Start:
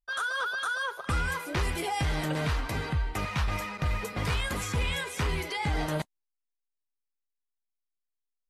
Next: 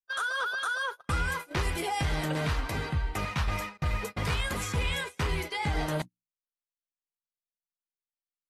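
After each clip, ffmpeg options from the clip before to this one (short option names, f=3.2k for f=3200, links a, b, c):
-af "bandreject=f=60:t=h:w=6,bandreject=f=120:t=h:w=6,bandreject=f=180:t=h:w=6,bandreject=f=240:t=h:w=6,bandreject=f=300:t=h:w=6,agate=range=-27dB:threshold=-35dB:ratio=16:detection=peak"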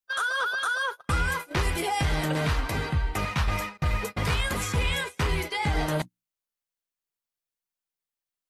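-af "highshelf=f=4.8k:g=-11.5,crystalizer=i=2:c=0,volume=3.5dB"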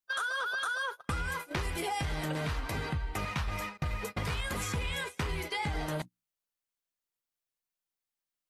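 -af "acompressor=threshold=-29dB:ratio=6,volume=-1.5dB"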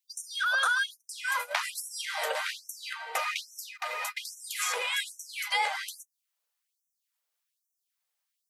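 -af "afftfilt=real='re*gte(b*sr/1024,410*pow(5600/410,0.5+0.5*sin(2*PI*1.2*pts/sr)))':imag='im*gte(b*sr/1024,410*pow(5600/410,0.5+0.5*sin(2*PI*1.2*pts/sr)))':win_size=1024:overlap=0.75,volume=7.5dB"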